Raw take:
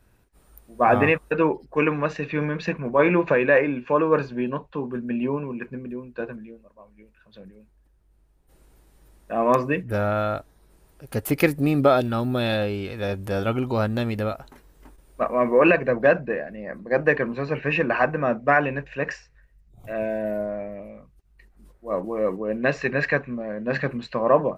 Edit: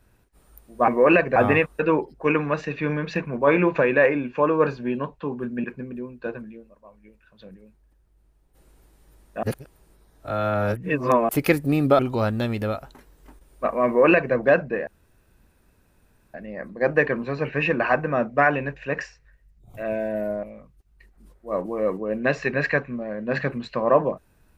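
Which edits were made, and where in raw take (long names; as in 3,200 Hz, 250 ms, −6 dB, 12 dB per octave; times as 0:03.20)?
0:05.16–0:05.58: remove
0:09.37–0:11.23: reverse
0:11.93–0:13.56: remove
0:15.43–0:15.91: duplicate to 0:00.88
0:16.44: splice in room tone 1.47 s
0:20.53–0:20.82: remove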